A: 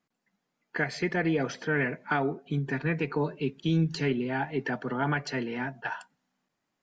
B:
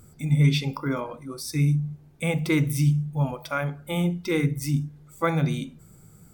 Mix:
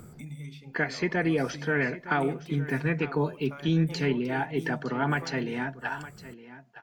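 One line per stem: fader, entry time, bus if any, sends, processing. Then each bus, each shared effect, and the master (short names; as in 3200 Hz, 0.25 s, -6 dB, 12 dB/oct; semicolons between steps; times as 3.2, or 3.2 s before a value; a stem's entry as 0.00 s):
+1.0 dB, 0.00 s, no send, echo send -15.5 dB, dry
-19.5 dB, 0.00 s, no send, no echo send, three-band squash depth 100%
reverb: off
echo: echo 0.912 s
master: dry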